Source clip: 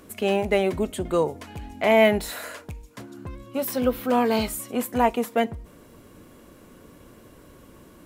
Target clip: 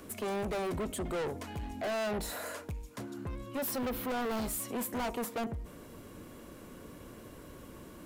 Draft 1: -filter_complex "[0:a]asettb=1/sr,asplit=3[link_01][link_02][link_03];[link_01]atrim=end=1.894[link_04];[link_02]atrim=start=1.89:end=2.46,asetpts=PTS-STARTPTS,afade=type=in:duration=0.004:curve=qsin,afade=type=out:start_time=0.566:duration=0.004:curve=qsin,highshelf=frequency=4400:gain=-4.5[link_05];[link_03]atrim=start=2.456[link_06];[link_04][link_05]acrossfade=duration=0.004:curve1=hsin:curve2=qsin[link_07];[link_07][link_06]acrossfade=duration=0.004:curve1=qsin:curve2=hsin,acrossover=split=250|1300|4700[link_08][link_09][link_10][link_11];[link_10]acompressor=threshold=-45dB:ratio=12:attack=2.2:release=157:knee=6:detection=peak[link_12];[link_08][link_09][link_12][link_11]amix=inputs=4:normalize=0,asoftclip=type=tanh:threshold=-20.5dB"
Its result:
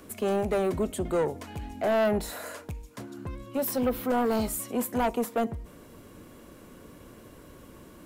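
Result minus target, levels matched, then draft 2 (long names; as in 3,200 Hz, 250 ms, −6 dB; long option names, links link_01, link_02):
soft clipping: distortion −7 dB
-filter_complex "[0:a]asettb=1/sr,asplit=3[link_01][link_02][link_03];[link_01]atrim=end=1.894[link_04];[link_02]atrim=start=1.89:end=2.46,asetpts=PTS-STARTPTS,afade=type=in:duration=0.004:curve=qsin,afade=type=out:start_time=0.566:duration=0.004:curve=qsin,highshelf=frequency=4400:gain=-4.5[link_05];[link_03]atrim=start=2.456[link_06];[link_04][link_05]acrossfade=duration=0.004:curve1=hsin:curve2=qsin[link_07];[link_07][link_06]acrossfade=duration=0.004:curve1=qsin:curve2=hsin,acrossover=split=250|1300|4700[link_08][link_09][link_10][link_11];[link_10]acompressor=threshold=-45dB:ratio=12:attack=2.2:release=157:knee=6:detection=peak[link_12];[link_08][link_09][link_12][link_11]amix=inputs=4:normalize=0,asoftclip=type=tanh:threshold=-32dB"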